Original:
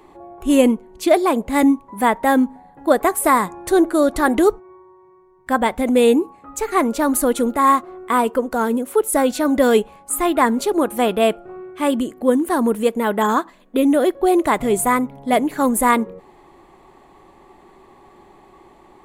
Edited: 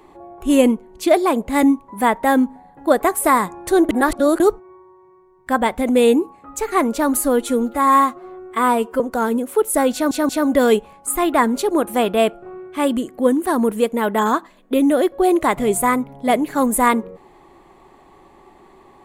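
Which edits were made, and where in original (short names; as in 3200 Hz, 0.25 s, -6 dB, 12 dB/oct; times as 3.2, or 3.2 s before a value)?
3.89–4.4 reverse
7.17–8.39 stretch 1.5×
9.32 stutter 0.18 s, 3 plays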